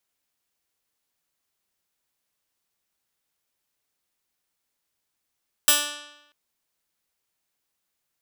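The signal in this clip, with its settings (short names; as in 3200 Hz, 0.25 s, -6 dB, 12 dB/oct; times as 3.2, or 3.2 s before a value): plucked string D4, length 0.64 s, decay 0.94 s, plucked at 0.13, bright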